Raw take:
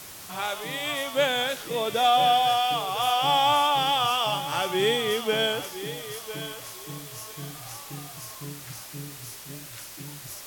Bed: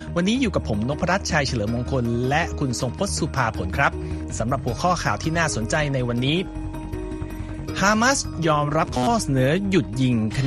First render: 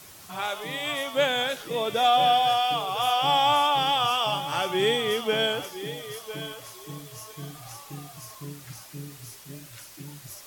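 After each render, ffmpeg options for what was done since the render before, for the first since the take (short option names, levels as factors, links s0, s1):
-af "afftdn=nr=6:nf=-43"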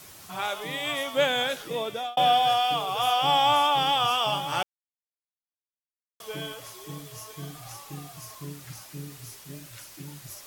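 -filter_complex "[0:a]asplit=4[s0][s1][s2][s3];[s0]atrim=end=2.17,asetpts=PTS-STARTPTS,afade=t=out:st=1.48:d=0.69:c=qsin[s4];[s1]atrim=start=2.17:end=4.63,asetpts=PTS-STARTPTS,afade=t=in:d=0.004:c=hsin,afade=t=out:st=2.456:d=0.004:c=hsin[s5];[s2]atrim=start=4.63:end=6.2,asetpts=PTS-STARTPTS,volume=0[s6];[s3]atrim=start=6.2,asetpts=PTS-STARTPTS,afade=t=in:d=0.004:c=hsin[s7];[s4][s5][s6][s7]concat=n=4:v=0:a=1"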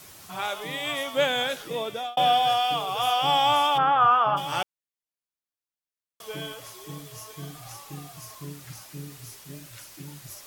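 -filter_complex "[0:a]asplit=3[s0][s1][s2];[s0]afade=t=out:st=3.77:d=0.02[s3];[s1]lowpass=f=1400:t=q:w=3.7,afade=t=in:st=3.77:d=0.02,afade=t=out:st=4.36:d=0.02[s4];[s2]afade=t=in:st=4.36:d=0.02[s5];[s3][s4][s5]amix=inputs=3:normalize=0"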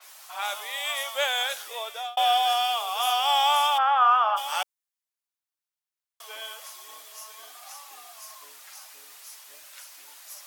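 -af "highpass=f=660:w=0.5412,highpass=f=660:w=1.3066,adynamicequalizer=threshold=0.01:dfrequency=4900:dqfactor=0.7:tfrequency=4900:tqfactor=0.7:attack=5:release=100:ratio=0.375:range=3:mode=boostabove:tftype=highshelf"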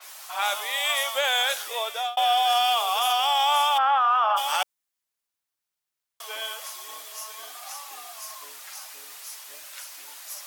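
-af "acontrast=30,alimiter=limit=0.2:level=0:latency=1:release=14"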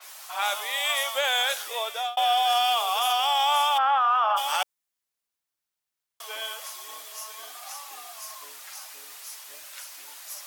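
-af "volume=0.891"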